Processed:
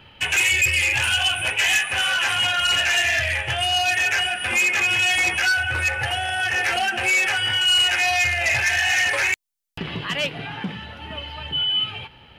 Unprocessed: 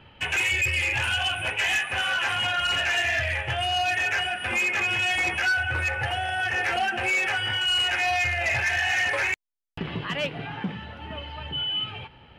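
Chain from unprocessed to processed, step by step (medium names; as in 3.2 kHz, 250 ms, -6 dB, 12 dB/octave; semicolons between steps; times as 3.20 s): treble shelf 3.1 kHz +11 dB; trim +1 dB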